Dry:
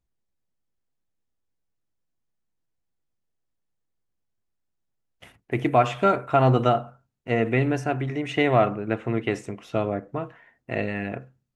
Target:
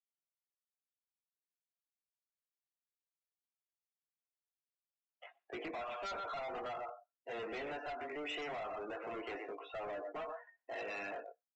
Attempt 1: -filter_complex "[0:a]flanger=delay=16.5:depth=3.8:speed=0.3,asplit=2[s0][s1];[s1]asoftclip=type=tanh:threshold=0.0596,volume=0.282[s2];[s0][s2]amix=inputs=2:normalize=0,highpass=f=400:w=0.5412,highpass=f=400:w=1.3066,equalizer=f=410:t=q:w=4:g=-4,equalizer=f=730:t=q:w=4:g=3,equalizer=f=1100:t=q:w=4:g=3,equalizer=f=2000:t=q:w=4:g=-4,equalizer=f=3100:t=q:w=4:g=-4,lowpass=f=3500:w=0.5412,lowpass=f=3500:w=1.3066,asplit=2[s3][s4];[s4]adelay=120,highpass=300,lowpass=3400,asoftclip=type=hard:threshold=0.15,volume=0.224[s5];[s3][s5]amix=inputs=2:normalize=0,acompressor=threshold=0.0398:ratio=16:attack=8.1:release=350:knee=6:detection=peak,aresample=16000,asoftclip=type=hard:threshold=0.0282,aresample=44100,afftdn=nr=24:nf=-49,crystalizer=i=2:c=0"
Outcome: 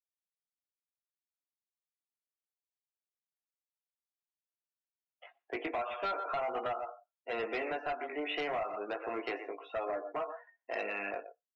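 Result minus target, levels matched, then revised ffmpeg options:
hard clipper: distortion -7 dB
-filter_complex "[0:a]flanger=delay=16.5:depth=3.8:speed=0.3,asplit=2[s0][s1];[s1]asoftclip=type=tanh:threshold=0.0596,volume=0.282[s2];[s0][s2]amix=inputs=2:normalize=0,highpass=f=400:w=0.5412,highpass=f=400:w=1.3066,equalizer=f=410:t=q:w=4:g=-4,equalizer=f=730:t=q:w=4:g=3,equalizer=f=1100:t=q:w=4:g=3,equalizer=f=2000:t=q:w=4:g=-4,equalizer=f=3100:t=q:w=4:g=-4,lowpass=f=3500:w=0.5412,lowpass=f=3500:w=1.3066,asplit=2[s3][s4];[s4]adelay=120,highpass=300,lowpass=3400,asoftclip=type=hard:threshold=0.15,volume=0.224[s5];[s3][s5]amix=inputs=2:normalize=0,acompressor=threshold=0.0398:ratio=16:attack=8.1:release=350:knee=6:detection=peak,aresample=16000,asoftclip=type=hard:threshold=0.00944,aresample=44100,afftdn=nr=24:nf=-49,crystalizer=i=2:c=0"

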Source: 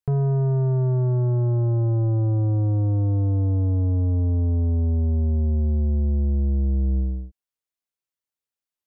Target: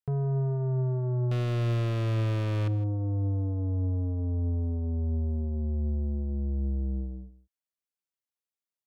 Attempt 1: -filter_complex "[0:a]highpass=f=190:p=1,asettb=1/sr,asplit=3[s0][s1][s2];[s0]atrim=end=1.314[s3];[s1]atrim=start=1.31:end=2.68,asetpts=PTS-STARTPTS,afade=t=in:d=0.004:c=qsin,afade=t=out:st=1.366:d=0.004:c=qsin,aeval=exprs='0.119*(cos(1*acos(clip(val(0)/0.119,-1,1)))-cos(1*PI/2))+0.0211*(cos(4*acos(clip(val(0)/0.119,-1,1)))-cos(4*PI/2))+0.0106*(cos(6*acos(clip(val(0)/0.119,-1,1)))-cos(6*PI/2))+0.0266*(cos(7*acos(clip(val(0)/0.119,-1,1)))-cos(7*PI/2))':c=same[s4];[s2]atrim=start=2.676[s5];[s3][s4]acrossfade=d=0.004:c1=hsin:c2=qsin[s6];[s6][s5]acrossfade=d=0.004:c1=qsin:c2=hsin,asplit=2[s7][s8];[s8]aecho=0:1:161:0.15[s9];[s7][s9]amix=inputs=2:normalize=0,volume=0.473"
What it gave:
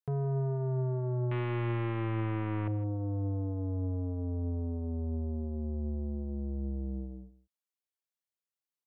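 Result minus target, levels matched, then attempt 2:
250 Hz band +3.0 dB
-filter_complex "[0:a]highpass=f=61:p=1,asettb=1/sr,asplit=3[s0][s1][s2];[s0]atrim=end=1.314[s3];[s1]atrim=start=1.31:end=2.68,asetpts=PTS-STARTPTS,afade=t=in:d=0.004:c=qsin,afade=t=out:st=1.366:d=0.004:c=qsin,aeval=exprs='0.119*(cos(1*acos(clip(val(0)/0.119,-1,1)))-cos(1*PI/2))+0.0211*(cos(4*acos(clip(val(0)/0.119,-1,1)))-cos(4*PI/2))+0.0106*(cos(6*acos(clip(val(0)/0.119,-1,1)))-cos(6*PI/2))+0.0266*(cos(7*acos(clip(val(0)/0.119,-1,1)))-cos(7*PI/2))':c=same[s4];[s2]atrim=start=2.676[s5];[s3][s4]acrossfade=d=0.004:c1=hsin:c2=qsin[s6];[s6][s5]acrossfade=d=0.004:c1=qsin:c2=hsin,asplit=2[s7][s8];[s8]aecho=0:1:161:0.15[s9];[s7][s9]amix=inputs=2:normalize=0,volume=0.473"

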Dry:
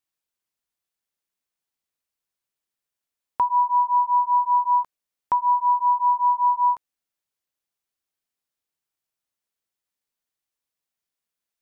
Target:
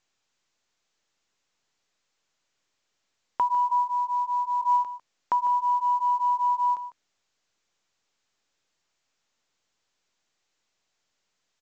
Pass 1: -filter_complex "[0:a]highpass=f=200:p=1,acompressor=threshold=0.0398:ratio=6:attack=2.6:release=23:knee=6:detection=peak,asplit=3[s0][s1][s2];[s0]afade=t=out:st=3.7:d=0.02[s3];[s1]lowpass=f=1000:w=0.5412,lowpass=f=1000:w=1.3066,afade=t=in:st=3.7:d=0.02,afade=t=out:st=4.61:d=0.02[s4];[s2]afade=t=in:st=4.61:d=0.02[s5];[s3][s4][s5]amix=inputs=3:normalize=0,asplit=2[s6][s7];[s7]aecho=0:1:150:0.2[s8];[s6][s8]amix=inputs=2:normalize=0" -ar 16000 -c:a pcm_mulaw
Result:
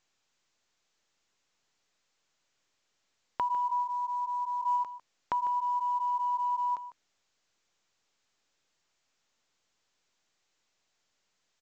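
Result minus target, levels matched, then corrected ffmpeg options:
compression: peak gain reduction +7 dB
-filter_complex "[0:a]highpass=f=200:p=1,acompressor=threshold=0.112:ratio=6:attack=2.6:release=23:knee=6:detection=peak,asplit=3[s0][s1][s2];[s0]afade=t=out:st=3.7:d=0.02[s3];[s1]lowpass=f=1000:w=0.5412,lowpass=f=1000:w=1.3066,afade=t=in:st=3.7:d=0.02,afade=t=out:st=4.61:d=0.02[s4];[s2]afade=t=in:st=4.61:d=0.02[s5];[s3][s4][s5]amix=inputs=3:normalize=0,asplit=2[s6][s7];[s7]aecho=0:1:150:0.2[s8];[s6][s8]amix=inputs=2:normalize=0" -ar 16000 -c:a pcm_mulaw

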